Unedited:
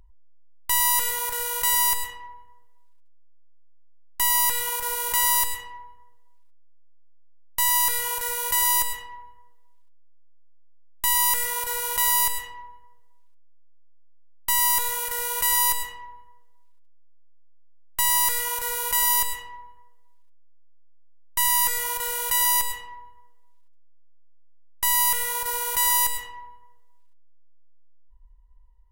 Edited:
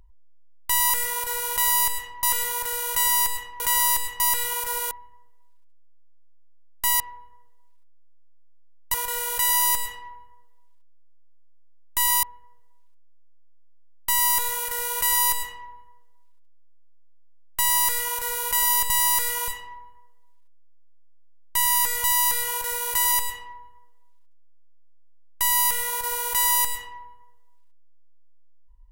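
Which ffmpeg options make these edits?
-filter_complex "[0:a]asplit=14[a][b][c][d][e][f][g][h][i][j][k][l][m][n];[a]atrim=end=0.902[o];[b]atrim=start=11.298:end=12.632[p];[c]atrim=start=0.898:end=2.272[q];[d]atrim=start=5.068:end=5.672[r];[e]atrim=start=4.358:end=5.072[s];[f]atrim=start=2.268:end=4.362[t];[g]atrim=start=5.668:end=7.612[u];[h]atrim=start=21.858:end=22.542[v];[i]atrim=start=8.688:end=11.302[w];[j]atrim=start=12.628:end=19.302[x];[k]atrim=start=17.998:end=18.582[y];[l]atrim=start=19.298:end=21.862[z];[m]atrim=start=7.608:end=8.692[aa];[n]atrim=start=22.538[ab];[o][p]acrossfade=d=0.004:c1=hsin:c2=hsin[ac];[ac][q]acrossfade=d=0.004:c1=hsin:c2=hsin[ad];[ad][r]acrossfade=d=0.004:c1=hsin:c2=hsin[ae];[ae][s]acrossfade=d=0.004:c1=hsin:c2=hsin[af];[af][t]acrossfade=d=0.004:c1=hsin:c2=hsin[ag];[ag][u]acrossfade=d=0.004:c1=hsin:c2=hsin[ah];[ah][v]acrossfade=d=0.004:c1=hsin:c2=hsin[ai];[ai][w]acrossfade=d=0.004:c1=hsin:c2=hsin[aj];[aj][x]acrossfade=d=0.004:c1=hsin:c2=hsin[ak];[ak][y]acrossfade=d=0.004:c1=hsin:c2=hsin[al];[al][z]acrossfade=d=0.004:c1=hsin:c2=hsin[am];[am][aa]acrossfade=d=0.004:c1=hsin:c2=hsin[an];[an][ab]acrossfade=d=0.004:c1=hsin:c2=hsin"

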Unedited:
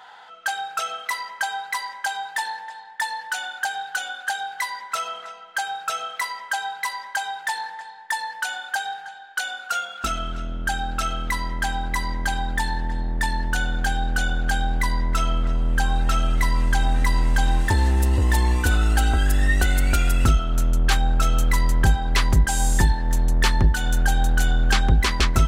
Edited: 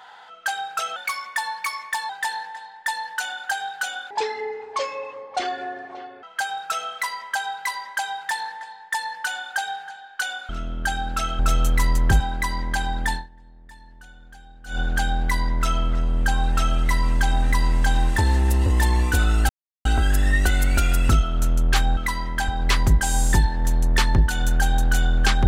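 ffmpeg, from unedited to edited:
-filter_complex "[0:a]asplit=13[a][b][c][d][e][f][g][h][i][j][k][l][m];[a]atrim=end=0.964[n];[b]atrim=start=0.96:end=2.23,asetpts=PTS-STARTPTS,asetrate=49392,aresample=44100,atrim=end_sample=50006,asetpts=PTS-STARTPTS[o];[c]atrim=start=2.226:end=4.244[p];[d]atrim=start=4.24:end=5.41,asetpts=PTS-STARTPTS,asetrate=24255,aresample=44100[q];[e]atrim=start=5.406:end=9.672[r];[f]atrim=start=10.308:end=11.212[s];[g]atrim=start=21.128:end=21.942[t];[h]atrim=start=11.718:end=12.82,asetpts=PTS-STARTPTS,afade=t=out:st=0.932:d=0.17:c=qua:silence=0.0707946[u];[i]atrim=start=12.82:end=14.14,asetpts=PTS-STARTPTS,volume=-23dB[v];[j]atrim=start=14.14:end=19.01,asetpts=PTS-STARTPTS,afade=t=in:d=0.17:c=qua:silence=0.0707946,afade=t=out:st=4.866:d=0.004:c=hsin,apad=pad_dur=0.36[w];[k]atrim=start=19.01:end=21.132,asetpts=PTS-STARTPTS,afade=t=in:d=0.004:c=hsin[x];[l]atrim=start=11.208:end=11.722[y];[m]atrim=start=21.938[z];[n][o]acrossfade=d=0.004:c1=hsin:c2=hsin[aa];[aa][p]acrossfade=d=0.004:c1=hsin:c2=hsin[ab];[ab][q]acrossfade=d=0.004:c1=hsin:c2=hsin[ac];[ac][r]acrossfade=d=0.004:c1=hsin:c2=hsin[ad];[ad][s]acrossfade=d=0.004:c1=hsin:c2=hsin[ae];[ae][t]acrossfade=d=0.004:c1=hsin:c2=hsin[af];[u][v][w][x]concat=n=4:v=0:a=1[ag];[af][ag]acrossfade=d=0.004:c1=hsin:c2=hsin[ah];[ah][y]acrossfade=d=0.004:c1=hsin:c2=hsin[ai];[ai][z]acrossfade=d=0.004:c1=hsin:c2=hsin"

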